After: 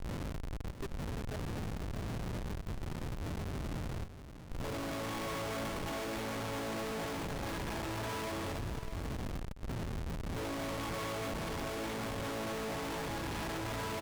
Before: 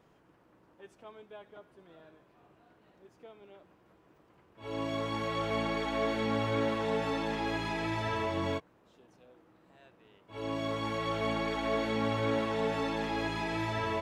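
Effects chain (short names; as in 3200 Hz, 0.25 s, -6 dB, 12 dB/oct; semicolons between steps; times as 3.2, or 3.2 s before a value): wind noise 170 Hz -36 dBFS; compressor 4:1, threshold -34 dBFS, peak gain reduction 15 dB; Schmitt trigger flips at -45.5 dBFS; echo 0.639 s -11 dB; Doppler distortion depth 0.18 ms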